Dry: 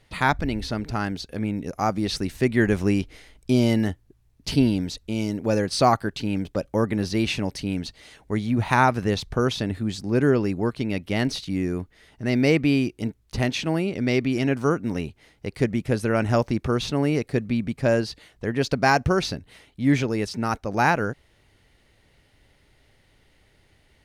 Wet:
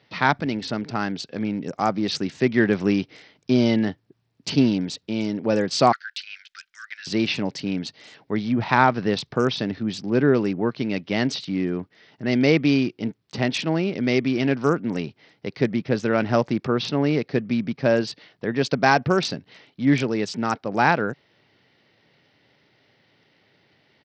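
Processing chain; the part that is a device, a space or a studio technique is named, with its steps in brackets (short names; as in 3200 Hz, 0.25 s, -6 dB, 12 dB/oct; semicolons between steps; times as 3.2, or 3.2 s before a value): 5.92–7.07 steep high-pass 1400 Hz 72 dB/oct; Bluetooth headset (HPF 130 Hz 24 dB/oct; downsampling 16000 Hz; gain +1.5 dB; SBC 64 kbps 44100 Hz)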